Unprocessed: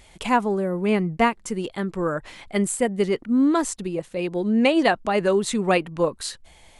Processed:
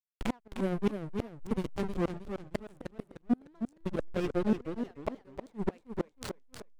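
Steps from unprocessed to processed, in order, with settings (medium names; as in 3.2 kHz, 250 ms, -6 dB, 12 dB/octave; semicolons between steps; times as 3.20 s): hysteresis with a dead band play -18 dBFS; inverted gate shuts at -18 dBFS, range -38 dB; modulated delay 308 ms, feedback 36%, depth 201 cents, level -7.5 dB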